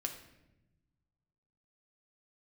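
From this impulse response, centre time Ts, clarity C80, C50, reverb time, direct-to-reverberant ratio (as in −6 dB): 18 ms, 11.0 dB, 8.5 dB, 0.95 s, 3.5 dB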